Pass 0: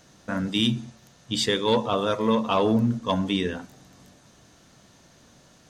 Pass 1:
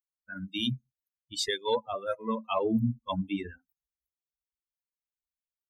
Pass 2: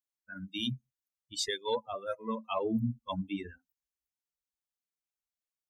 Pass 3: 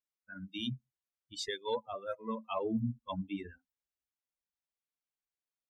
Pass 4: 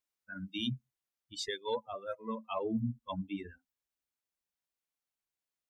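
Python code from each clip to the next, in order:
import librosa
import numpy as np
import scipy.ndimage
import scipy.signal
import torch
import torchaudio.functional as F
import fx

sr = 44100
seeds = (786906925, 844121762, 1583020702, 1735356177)

y1 = fx.bin_expand(x, sr, power=3.0)
y1 = F.gain(torch.from_numpy(y1), -1.5).numpy()
y2 = fx.peak_eq(y1, sr, hz=6400.0, db=4.0, octaves=0.77)
y2 = F.gain(torch.from_numpy(y2), -4.0).numpy()
y3 = fx.lowpass(y2, sr, hz=4000.0, slope=6)
y3 = F.gain(torch.from_numpy(y3), -2.5).numpy()
y4 = fx.rider(y3, sr, range_db=5, speed_s=2.0)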